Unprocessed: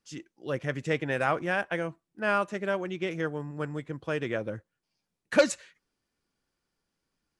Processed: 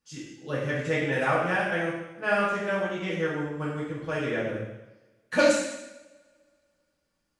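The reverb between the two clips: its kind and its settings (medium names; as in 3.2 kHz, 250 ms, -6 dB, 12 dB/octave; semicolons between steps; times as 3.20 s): two-slope reverb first 0.92 s, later 2.5 s, from -27 dB, DRR -7 dB; trim -4.5 dB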